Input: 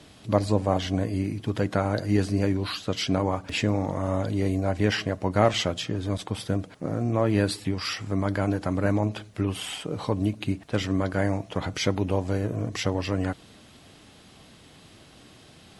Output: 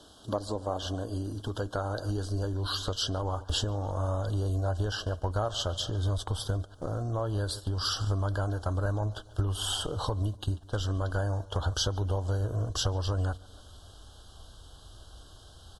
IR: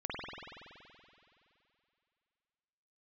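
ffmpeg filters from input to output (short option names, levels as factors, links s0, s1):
-filter_complex "[0:a]asuperstop=centerf=2200:order=12:qfactor=1.7,asplit=2[s0][s1];[s1]adelay=144,lowpass=f=4500:p=1,volume=0.106,asplit=2[s2][s3];[s3]adelay=144,lowpass=f=4500:p=1,volume=0.46,asplit=2[s4][s5];[s5]adelay=144,lowpass=f=4500:p=1,volume=0.46,asplit=2[s6][s7];[s7]adelay=144,lowpass=f=4500:p=1,volume=0.46[s8];[s2][s4][s6][s8]amix=inputs=4:normalize=0[s9];[s0][s9]amix=inputs=2:normalize=0,acompressor=threshold=0.0178:ratio=4,equalizer=f=150:w=1:g=-11,agate=range=0.355:threshold=0.00501:ratio=16:detection=peak,asubboost=boost=11:cutoff=71,volume=2.51"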